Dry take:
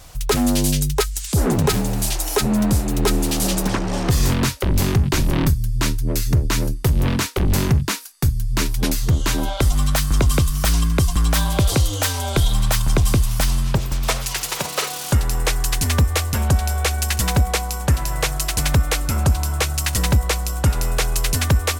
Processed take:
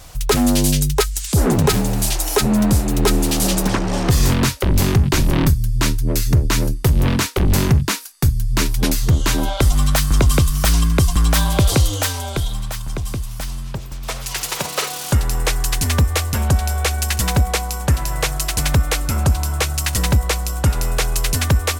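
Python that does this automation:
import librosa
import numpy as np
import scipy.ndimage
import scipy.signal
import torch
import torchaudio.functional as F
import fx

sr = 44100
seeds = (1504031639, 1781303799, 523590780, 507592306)

y = fx.gain(x, sr, db=fx.line((11.88, 2.5), (12.72, -8.0), (14.0, -8.0), (14.4, 1.0)))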